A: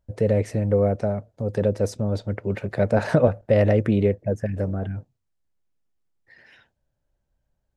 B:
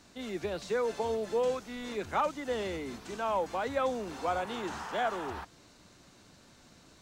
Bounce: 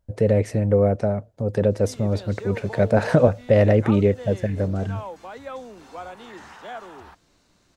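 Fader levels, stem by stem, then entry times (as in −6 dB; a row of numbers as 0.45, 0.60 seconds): +2.0, −5.0 decibels; 0.00, 1.70 seconds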